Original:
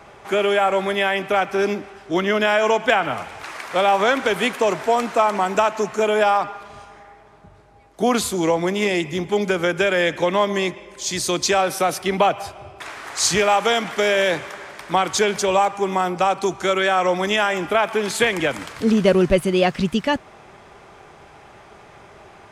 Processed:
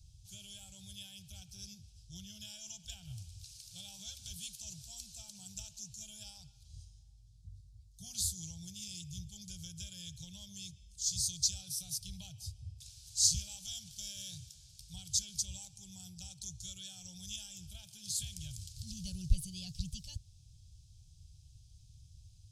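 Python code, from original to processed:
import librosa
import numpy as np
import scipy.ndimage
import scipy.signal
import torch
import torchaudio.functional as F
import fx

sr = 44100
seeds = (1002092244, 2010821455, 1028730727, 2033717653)

y = scipy.signal.sosfilt(scipy.signal.cheby2(4, 50, [250.0, 2100.0], 'bandstop', fs=sr, output='sos'), x)
y = fx.high_shelf(y, sr, hz=3600.0, db=-10.5)
y = F.gain(torch.from_numpy(y), 1.5).numpy()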